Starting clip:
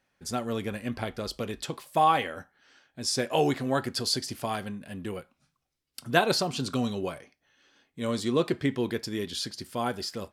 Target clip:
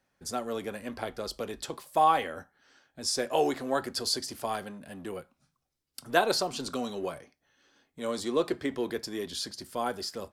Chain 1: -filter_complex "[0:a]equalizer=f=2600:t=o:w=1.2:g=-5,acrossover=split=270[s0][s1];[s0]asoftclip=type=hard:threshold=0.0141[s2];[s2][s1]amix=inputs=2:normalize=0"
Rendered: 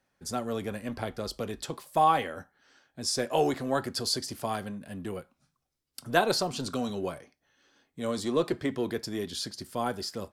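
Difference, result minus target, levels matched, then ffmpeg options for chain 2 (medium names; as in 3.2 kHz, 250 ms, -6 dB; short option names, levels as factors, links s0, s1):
hard clipper: distortion -5 dB
-filter_complex "[0:a]equalizer=f=2600:t=o:w=1.2:g=-5,acrossover=split=270[s0][s1];[s0]asoftclip=type=hard:threshold=0.00376[s2];[s2][s1]amix=inputs=2:normalize=0"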